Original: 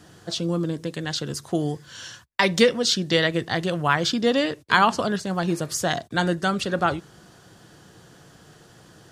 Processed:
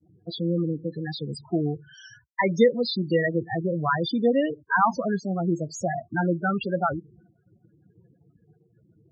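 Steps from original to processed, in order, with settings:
spectral peaks only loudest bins 8
downward expander −47 dBFS

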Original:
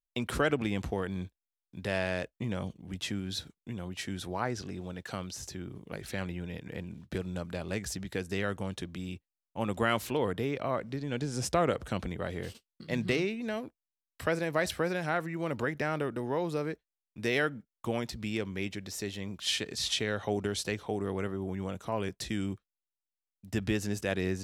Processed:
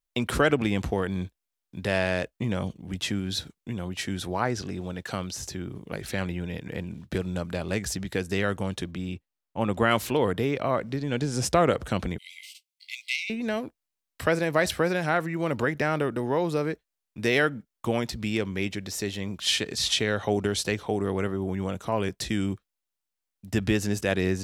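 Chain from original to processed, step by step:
0:08.91–0:09.91: high-shelf EQ 4,300 Hz −7.5 dB
0:12.18–0:13.30: linear-phase brick-wall high-pass 2,000 Hz
level +6 dB

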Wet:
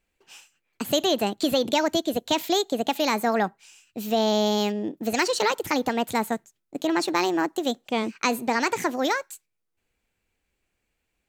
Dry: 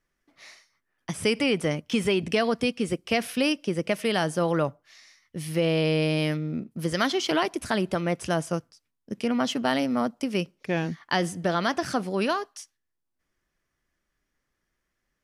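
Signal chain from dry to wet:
wrong playback speed 33 rpm record played at 45 rpm
level +1.5 dB

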